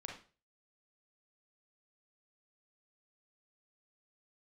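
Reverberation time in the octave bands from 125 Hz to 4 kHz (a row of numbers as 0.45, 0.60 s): 0.45, 0.35, 0.40, 0.35, 0.35, 0.35 s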